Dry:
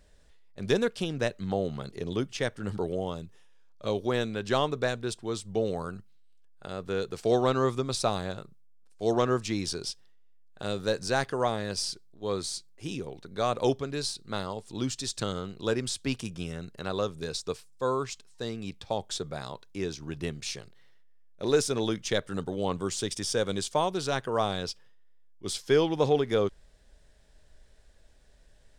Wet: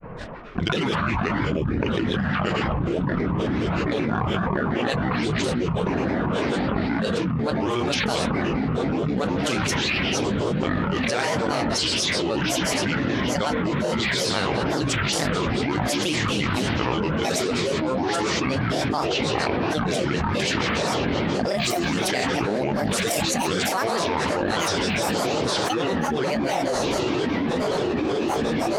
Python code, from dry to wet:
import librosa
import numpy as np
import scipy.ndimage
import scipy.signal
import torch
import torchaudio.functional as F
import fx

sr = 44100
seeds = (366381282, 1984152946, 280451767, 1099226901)

p1 = fx.pitch_glide(x, sr, semitones=-11.5, runs='ending unshifted')
p2 = fx.env_lowpass(p1, sr, base_hz=1500.0, full_db=-23.5)
p3 = fx.rev_gated(p2, sr, seeds[0], gate_ms=300, shape='flat', drr_db=4.0)
p4 = fx.rider(p3, sr, range_db=10, speed_s=0.5)
p5 = p3 + F.gain(torch.from_numpy(p4), 1.5).numpy()
p6 = fx.high_shelf(p5, sr, hz=9700.0, db=7.5)
p7 = p6 + fx.echo_diffused(p6, sr, ms=1589, feedback_pct=42, wet_db=-11, dry=0)
p8 = fx.dynamic_eq(p7, sr, hz=1600.0, q=1.9, threshold_db=-46.0, ratio=4.0, max_db=8)
p9 = fx.granulator(p8, sr, seeds[1], grain_ms=127.0, per_s=19.0, spray_ms=16.0, spread_st=12)
p10 = fx.highpass(p9, sr, hz=130.0, slope=6)
p11 = fx.env_flatten(p10, sr, amount_pct=100)
y = F.gain(torch.from_numpy(p11), -8.5).numpy()